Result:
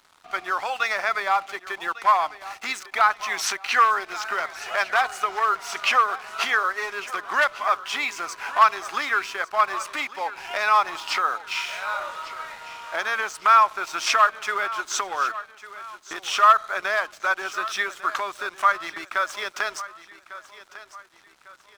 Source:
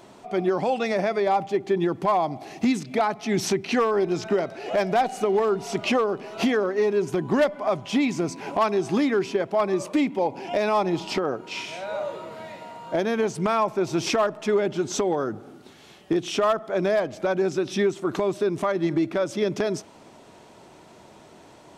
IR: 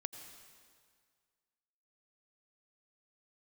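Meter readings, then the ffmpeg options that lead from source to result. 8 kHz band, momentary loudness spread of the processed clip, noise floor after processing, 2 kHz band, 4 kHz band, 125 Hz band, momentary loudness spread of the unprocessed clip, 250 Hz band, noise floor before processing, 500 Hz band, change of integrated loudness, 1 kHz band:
+3.5 dB, 14 LU, −54 dBFS, +9.5 dB, +4.5 dB, below −25 dB, 6 LU, −22.0 dB, −50 dBFS, −10.5 dB, +1.5 dB, +6.5 dB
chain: -af "highpass=frequency=1300:width_type=q:width=3,aeval=exprs='sgn(val(0))*max(abs(val(0))-0.00398,0)':channel_layout=same,aecho=1:1:1150|2300|3450:0.158|0.0602|0.0229,volume=4dB"

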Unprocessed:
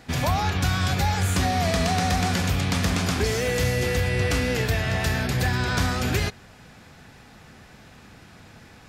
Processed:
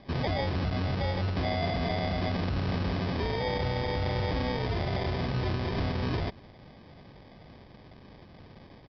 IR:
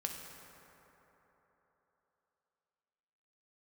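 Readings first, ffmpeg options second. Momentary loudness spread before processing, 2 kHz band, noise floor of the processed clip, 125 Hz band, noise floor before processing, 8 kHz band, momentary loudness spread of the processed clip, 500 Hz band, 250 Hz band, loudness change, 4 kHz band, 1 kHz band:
2 LU, −10.5 dB, −52 dBFS, −6.0 dB, −49 dBFS, below −25 dB, 1 LU, −4.5 dB, −5.0 dB, −7.0 dB, −8.5 dB, −7.0 dB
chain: -af "alimiter=limit=-19.5dB:level=0:latency=1:release=13,aresample=11025,acrusher=samples=8:mix=1:aa=0.000001,aresample=44100,volume=-2.5dB"

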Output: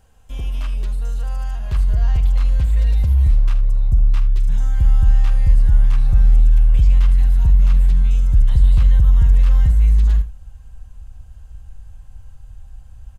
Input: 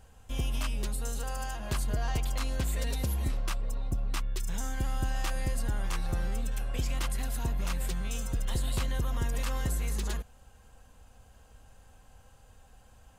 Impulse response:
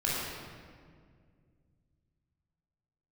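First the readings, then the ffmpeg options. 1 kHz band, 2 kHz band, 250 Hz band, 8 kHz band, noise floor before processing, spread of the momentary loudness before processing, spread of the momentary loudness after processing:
−0.5 dB, −0.5 dB, +3.5 dB, −8.0 dB, −58 dBFS, 4 LU, 10 LU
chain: -filter_complex "[0:a]asubboost=boost=12:cutoff=96,acrossover=split=4200[link_01][link_02];[link_02]acompressor=threshold=-51dB:ratio=4:attack=1:release=60[link_03];[link_01][link_03]amix=inputs=2:normalize=0,aecho=1:1:45|78:0.211|0.188"

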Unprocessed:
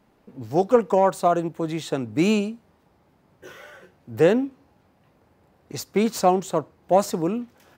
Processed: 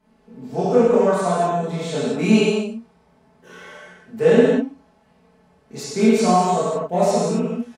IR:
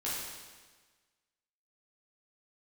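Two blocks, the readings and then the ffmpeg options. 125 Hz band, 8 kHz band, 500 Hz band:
+5.0 dB, +4.0 dB, +4.0 dB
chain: -filter_complex "[0:a]aecho=1:1:4.6:0.82[link_01];[1:a]atrim=start_sample=2205,atrim=end_sample=6615,asetrate=23373,aresample=44100[link_02];[link_01][link_02]afir=irnorm=-1:irlink=0,volume=-6.5dB"

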